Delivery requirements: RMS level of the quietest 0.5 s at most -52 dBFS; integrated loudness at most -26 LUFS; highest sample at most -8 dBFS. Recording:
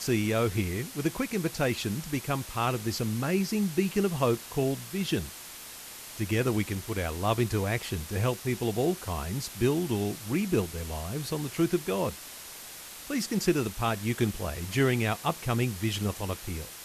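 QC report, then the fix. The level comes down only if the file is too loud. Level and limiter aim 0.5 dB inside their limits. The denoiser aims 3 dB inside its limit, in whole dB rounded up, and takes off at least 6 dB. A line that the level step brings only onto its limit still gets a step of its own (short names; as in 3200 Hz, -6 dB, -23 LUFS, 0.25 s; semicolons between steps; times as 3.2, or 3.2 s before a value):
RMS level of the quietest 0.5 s -44 dBFS: fail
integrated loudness -29.5 LUFS: OK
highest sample -12.0 dBFS: OK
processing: denoiser 11 dB, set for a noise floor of -44 dBFS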